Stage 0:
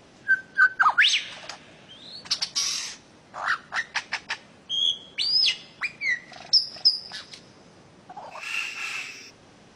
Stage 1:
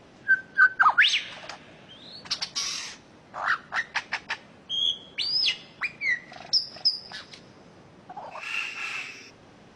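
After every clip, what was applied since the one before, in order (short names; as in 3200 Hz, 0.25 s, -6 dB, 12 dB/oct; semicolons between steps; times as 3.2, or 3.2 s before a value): high shelf 5300 Hz -10.5 dB; gain +1 dB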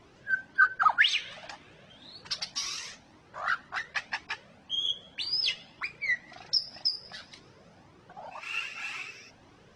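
cascading flanger rising 1.9 Hz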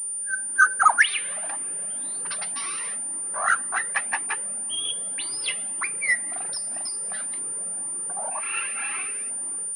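three-band isolator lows -21 dB, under 170 Hz, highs -12 dB, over 2300 Hz; AGC gain up to 11.5 dB; pulse-width modulation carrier 9200 Hz; gain -2.5 dB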